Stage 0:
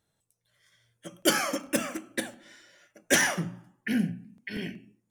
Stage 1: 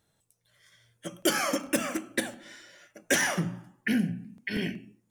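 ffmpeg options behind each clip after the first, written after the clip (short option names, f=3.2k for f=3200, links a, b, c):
-af "acompressor=threshold=-28dB:ratio=3,volume=4.5dB"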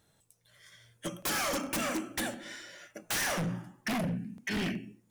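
-af "aeval=exprs='0.299*(cos(1*acos(clip(val(0)/0.299,-1,1)))-cos(1*PI/2))+0.0596*(cos(3*acos(clip(val(0)/0.299,-1,1)))-cos(3*PI/2))+0.0841*(cos(7*acos(clip(val(0)/0.299,-1,1)))-cos(7*PI/2))':c=same,volume=29.5dB,asoftclip=hard,volume=-29.5dB"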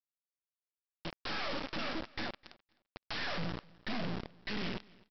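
-af "aresample=11025,acrusher=bits=3:dc=4:mix=0:aa=0.000001,aresample=44100,aecho=1:1:257|514:0.0668|0.0114,volume=-2dB"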